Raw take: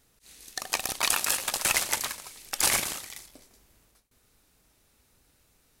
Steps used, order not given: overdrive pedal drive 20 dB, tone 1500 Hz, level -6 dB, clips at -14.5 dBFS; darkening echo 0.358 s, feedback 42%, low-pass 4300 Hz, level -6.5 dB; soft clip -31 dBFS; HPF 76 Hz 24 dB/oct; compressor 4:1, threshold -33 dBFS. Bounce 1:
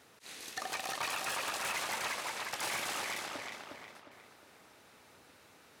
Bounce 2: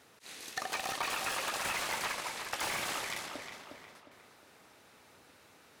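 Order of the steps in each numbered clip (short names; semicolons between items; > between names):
compressor > darkening echo > overdrive pedal > soft clip > HPF; HPF > soft clip > overdrive pedal > compressor > darkening echo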